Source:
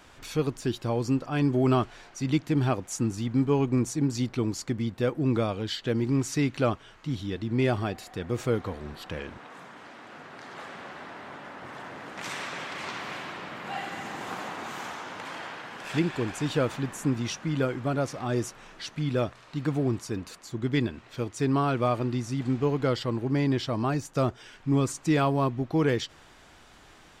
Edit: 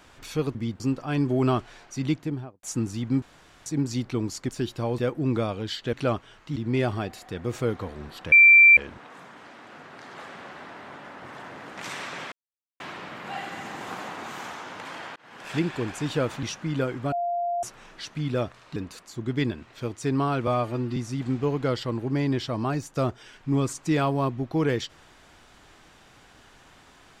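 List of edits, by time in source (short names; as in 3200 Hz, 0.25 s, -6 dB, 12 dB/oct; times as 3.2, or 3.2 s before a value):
0.55–1.04 swap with 4.73–4.98
2.28–2.87 studio fade out
3.46–3.9 room tone
5.93–6.5 cut
7.13–7.41 cut
9.17 add tone 2350 Hz -9.5 dBFS 0.45 s
12.72–13.2 mute
15.56–16.02 fade in equal-power
16.83–17.24 cut
17.93–18.44 bleep 696 Hz -24 dBFS
19.57–20.12 cut
21.83–22.16 stretch 1.5×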